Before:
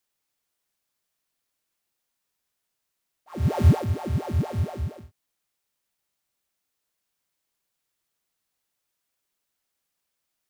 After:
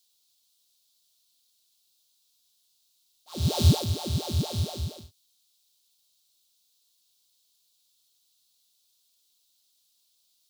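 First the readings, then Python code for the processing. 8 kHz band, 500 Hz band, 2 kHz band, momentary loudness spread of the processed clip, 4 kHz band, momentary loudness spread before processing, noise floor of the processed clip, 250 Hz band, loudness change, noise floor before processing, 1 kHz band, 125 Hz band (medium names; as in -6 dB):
no reading, -3.0 dB, -4.5 dB, 14 LU, +14.5 dB, 14 LU, -70 dBFS, -2.5 dB, -2.0 dB, -81 dBFS, -4.0 dB, -2.5 dB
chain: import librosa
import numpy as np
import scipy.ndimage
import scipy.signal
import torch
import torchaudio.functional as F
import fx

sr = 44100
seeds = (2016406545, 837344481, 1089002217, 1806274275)

y = fx.high_shelf_res(x, sr, hz=2700.0, db=12.5, q=3.0)
y = y * 10.0 ** (-2.5 / 20.0)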